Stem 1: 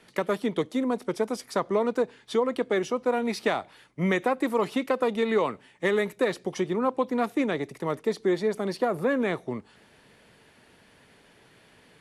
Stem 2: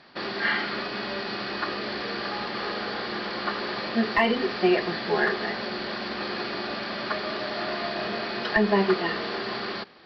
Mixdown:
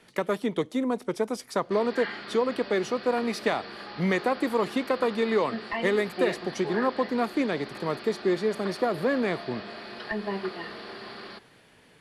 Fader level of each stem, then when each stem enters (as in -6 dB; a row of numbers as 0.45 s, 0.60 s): -0.5 dB, -10.0 dB; 0.00 s, 1.55 s